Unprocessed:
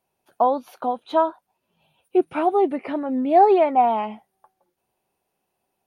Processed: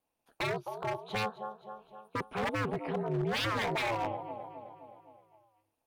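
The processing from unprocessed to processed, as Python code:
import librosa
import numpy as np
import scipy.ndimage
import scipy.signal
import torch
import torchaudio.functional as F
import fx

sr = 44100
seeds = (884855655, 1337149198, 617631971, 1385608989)

y = fx.echo_feedback(x, sr, ms=260, feedback_pct=56, wet_db=-14.5)
y = 10.0 ** (-19.0 / 20.0) * (np.abs((y / 10.0 ** (-19.0 / 20.0) + 3.0) % 4.0 - 2.0) - 1.0)
y = y * np.sin(2.0 * np.pi * 110.0 * np.arange(len(y)) / sr)
y = y * librosa.db_to_amplitude(-5.0)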